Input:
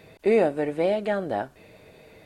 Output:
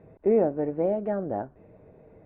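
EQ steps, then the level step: low-pass 1.3 kHz 12 dB/octave; distance through air 290 m; tilt shelf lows +3.5 dB, about 770 Hz; -2.5 dB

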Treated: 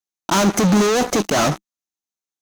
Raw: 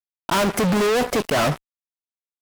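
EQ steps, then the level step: graphic EQ with 31 bands 200 Hz +7 dB, 315 Hz +8 dB, 800 Hz +4 dB, 1.25 kHz +3 dB, 4 kHz +4 dB, 6.3 kHz +12 dB; 0.0 dB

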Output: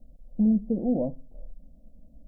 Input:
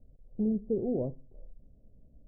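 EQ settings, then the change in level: static phaser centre 400 Hz, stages 6; +8.0 dB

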